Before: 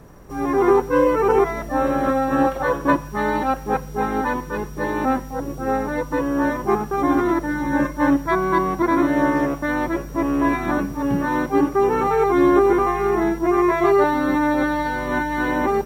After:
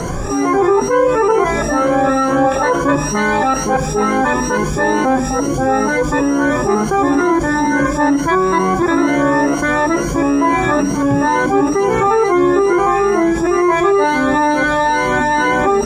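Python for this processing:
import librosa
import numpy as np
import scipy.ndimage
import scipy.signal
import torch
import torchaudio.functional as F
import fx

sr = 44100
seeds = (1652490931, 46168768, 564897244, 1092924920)

y = fx.spec_ripple(x, sr, per_octave=1.9, drift_hz=2.2, depth_db=15)
y = fx.lowpass_res(y, sr, hz=7400.0, q=2.6)
y = fx.hum_notches(y, sr, base_hz=50, count=6)
y = fx.env_flatten(y, sr, amount_pct=70)
y = y * librosa.db_to_amplitude(-2.5)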